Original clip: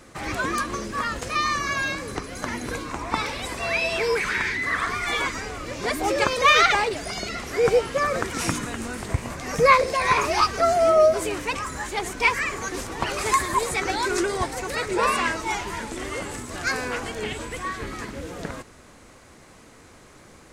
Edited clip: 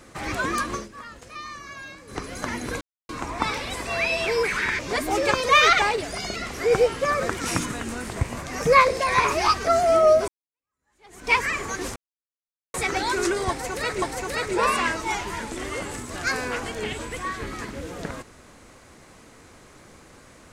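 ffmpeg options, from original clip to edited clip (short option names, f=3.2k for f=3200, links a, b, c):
-filter_complex "[0:a]asplit=9[a][b][c][d][e][f][g][h][i];[a]atrim=end=0.89,asetpts=PTS-STARTPTS,afade=t=out:st=0.75:d=0.14:silence=0.211349[j];[b]atrim=start=0.89:end=2.07,asetpts=PTS-STARTPTS,volume=-13.5dB[k];[c]atrim=start=2.07:end=2.81,asetpts=PTS-STARTPTS,afade=t=in:d=0.14:silence=0.211349,afade=t=out:st=0.736:d=0.004:c=hsin,apad=pad_dur=0.28[l];[d]atrim=start=2.81:end=4.512,asetpts=PTS-STARTPTS,afade=t=in:d=0.004:c=hsin[m];[e]atrim=start=5.718:end=11.21,asetpts=PTS-STARTPTS,afade=t=out:st=5.488:d=0.004:c=hsin[n];[f]atrim=start=11.21:end=12.89,asetpts=PTS-STARTPTS,afade=t=in:d=1.02:c=exp,afade=t=out:st=1.676:d=0.004:c=hsin[o];[g]atrim=start=12.89:end=13.67,asetpts=PTS-STARTPTS,volume=0[p];[h]atrim=start=13.67:end=14.952,asetpts=PTS-STARTPTS,afade=t=in:d=0.004:c=hsin[q];[i]atrim=start=14.418[r];[j][k][l][m]concat=n=4:v=0:a=1[s];[n][o][p][q]concat=n=4:v=0:a=1[t];[s][t]acrossfade=d=0.004:c1=hsin:c2=hsin[u];[u][r]acrossfade=d=0.004:c1=hsin:c2=hsin"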